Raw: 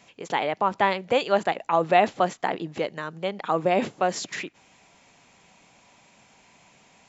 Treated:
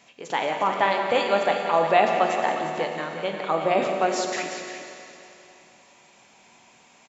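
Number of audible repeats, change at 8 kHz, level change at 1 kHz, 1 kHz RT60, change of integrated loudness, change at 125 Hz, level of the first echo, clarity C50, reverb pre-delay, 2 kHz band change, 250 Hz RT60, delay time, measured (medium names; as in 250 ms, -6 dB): 2, no reading, +1.5 dB, 2.9 s, +1.5 dB, -3.0 dB, -10.0 dB, 2.0 dB, 11 ms, +2.5 dB, 2.9 s, 176 ms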